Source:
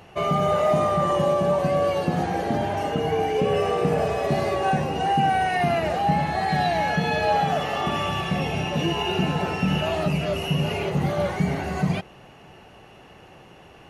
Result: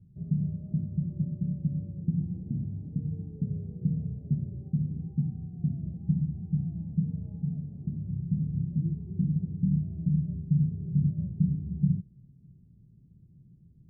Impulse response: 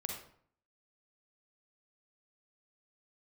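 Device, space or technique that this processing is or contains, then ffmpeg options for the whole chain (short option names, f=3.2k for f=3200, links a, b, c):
the neighbour's flat through the wall: -af "lowpass=f=200:w=0.5412,lowpass=f=200:w=1.3066,equalizer=f=140:t=o:w=0.94:g=6,volume=-5dB"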